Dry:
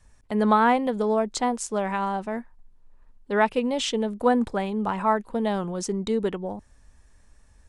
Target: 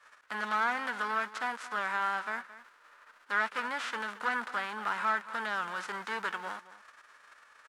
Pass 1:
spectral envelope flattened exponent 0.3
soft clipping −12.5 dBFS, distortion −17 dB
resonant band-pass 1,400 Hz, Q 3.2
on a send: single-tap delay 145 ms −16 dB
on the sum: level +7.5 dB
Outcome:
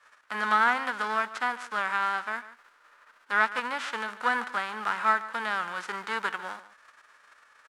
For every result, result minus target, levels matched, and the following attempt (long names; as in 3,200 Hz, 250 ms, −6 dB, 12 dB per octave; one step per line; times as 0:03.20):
echo 77 ms early; soft clipping: distortion −10 dB
spectral envelope flattened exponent 0.3
soft clipping −12.5 dBFS, distortion −17 dB
resonant band-pass 1,400 Hz, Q 3.2
on a send: single-tap delay 222 ms −16 dB
on the sum: level +7.5 dB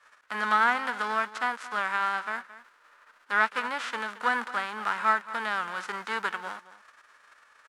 soft clipping: distortion −10 dB
spectral envelope flattened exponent 0.3
soft clipping −24 dBFS, distortion −7 dB
resonant band-pass 1,400 Hz, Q 3.2
on a send: single-tap delay 222 ms −16 dB
on the sum: level +7.5 dB